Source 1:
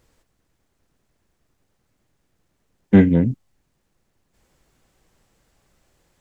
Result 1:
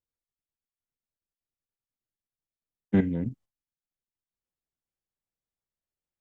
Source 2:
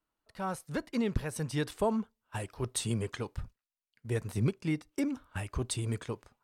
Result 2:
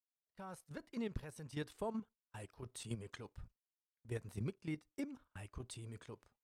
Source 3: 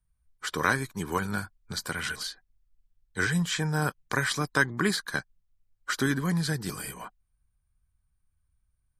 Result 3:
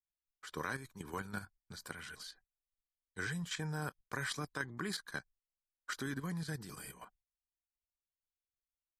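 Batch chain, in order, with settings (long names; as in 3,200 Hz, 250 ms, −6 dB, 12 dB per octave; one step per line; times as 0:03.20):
noise gate with hold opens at −43 dBFS
output level in coarse steps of 10 dB
level −8.5 dB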